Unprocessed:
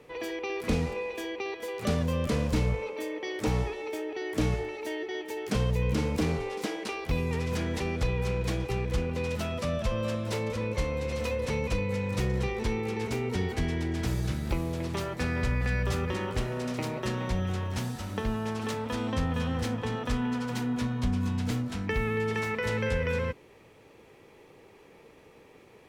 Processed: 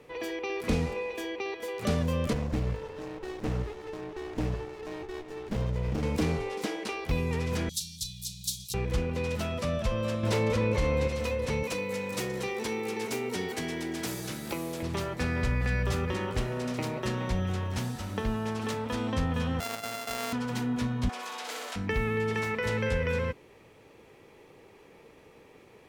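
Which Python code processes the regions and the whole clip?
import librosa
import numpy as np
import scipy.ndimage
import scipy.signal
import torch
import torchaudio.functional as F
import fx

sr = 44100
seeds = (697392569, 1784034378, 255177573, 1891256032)

y = fx.chain(x, sr, fx.cheby_ripple(hz=7300.0, ripple_db=3),
    fx.filter_lfo_notch(shape='saw_up', hz=5.4, low_hz=770.0, high_hz=3200.0, q=2.7),
    fx.running_max(window=33), at=(2.33, 6.03))
y = fx.chain(y, sr, fx.cheby1_bandstop(low_hz=180.0, high_hz=3700.0, order=4),
    fx.tilt_eq(slope=4.5), at=(7.69, 8.74))
y = fx.chain(y, sr, fx.high_shelf(hz=5700.0, db=-4.0),
    fx.env_flatten(amount_pct=70), at=(10.23, 11.08))
y = fx.chain(y, sr, fx.highpass(hz=230.0, slope=12),
    fx.high_shelf(hz=6700.0, db=10.5),
    fx.quant_companded(bits=8), at=(11.63, 14.83))
y = fx.chain(y, sr, fx.sample_sort(block=64),
    fx.highpass(hz=780.0, slope=6), at=(19.6, 20.33))
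y = fx.chain(y, sr, fx.highpass(hz=510.0, slope=24),
    fx.room_flutter(wall_m=10.7, rt60_s=0.79),
    fx.env_flatten(amount_pct=70), at=(21.09, 21.76))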